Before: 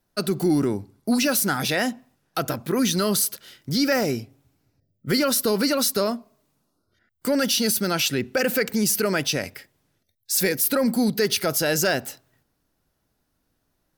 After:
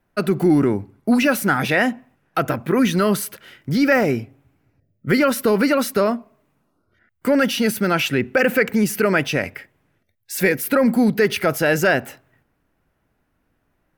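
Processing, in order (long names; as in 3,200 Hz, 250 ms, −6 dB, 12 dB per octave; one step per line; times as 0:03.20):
high shelf with overshoot 3,200 Hz −10 dB, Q 1.5
level +5 dB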